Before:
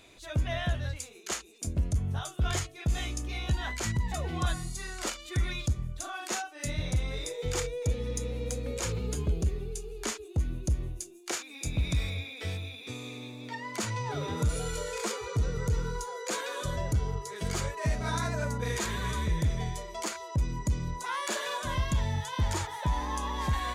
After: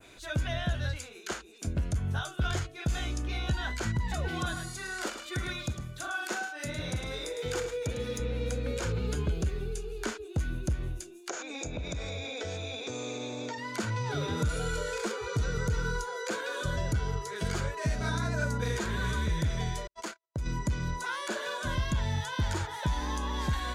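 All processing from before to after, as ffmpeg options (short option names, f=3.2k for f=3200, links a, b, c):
-filter_complex "[0:a]asettb=1/sr,asplit=3[a][b][c];[a]atrim=end=4.284[d];[b]atrim=start=4.28:end=8.2,asetpts=PTS-STARTPTS,afade=t=in:d=0.004:c=qsin,afade=t=out:st=3.916:d=0.004:c=qsin,highpass=f=210:p=1,highshelf=f=8.9k:g=7.5,aecho=1:1:105:0.299,atrim=end_sample=172872[e];[c]atrim=start=8.196[f];[d][e]acrossfade=d=0.004:c1=hsin:c2=qsin[g];[g][f]acrossfade=d=0.004:c1=qsin:c2=hsin,asettb=1/sr,asplit=3[h][i][j];[h]atrim=end=11.294[k];[i]atrim=start=11.29:end=13.58,asetpts=PTS-STARTPTS,afade=t=in:d=0.004:c=qsin,afade=t=out:st=2.286:d=0.004:c=qsin,equalizer=f=590:t=o:w=1.8:g=14.5,acompressor=threshold=-36dB:ratio=5:attack=3.2:release=140:knee=1:detection=peak,lowpass=f=6.7k:t=q:w=7[l];[j]atrim=start=13.576[m];[k][l]acrossfade=d=0.004:c1=hsin:c2=qsin[n];[n][m]acrossfade=d=0.004:c1=qsin:c2=hsin,asettb=1/sr,asplit=3[o][p][q];[o]atrim=end=19.874[r];[p]atrim=start=19.87:end=20.46,asetpts=PTS-STARTPTS,afade=t=in:d=0.004:c=qsin,afade=t=out:st=0.586:d=0.004:c=qsin,agate=range=-58dB:threshold=-36dB:ratio=16:release=100:detection=peak,acompressor=threshold=-34dB:ratio=4:attack=3.2:release=140:knee=1:detection=peak[s];[q]atrim=start=20.456[t];[r][s]acrossfade=d=0.004:c1=hsin:c2=qsin[u];[u][t]acrossfade=d=0.004:c1=qsin:c2=hsin,adynamicequalizer=threshold=0.00398:dfrequency=3900:dqfactor=0.72:tfrequency=3900:tqfactor=0.72:attack=5:release=100:ratio=0.375:range=2.5:mode=boostabove:tftype=bell,acrossover=split=550|1300|3200[v][w][x][y];[v]acompressor=threshold=-29dB:ratio=4[z];[w]acompressor=threshold=-45dB:ratio=4[aa];[x]acompressor=threshold=-49dB:ratio=4[ab];[y]acompressor=threshold=-47dB:ratio=4[ac];[z][aa][ab][ac]amix=inputs=4:normalize=0,equalizer=f=1.5k:w=6.7:g=10.5,volume=2.5dB"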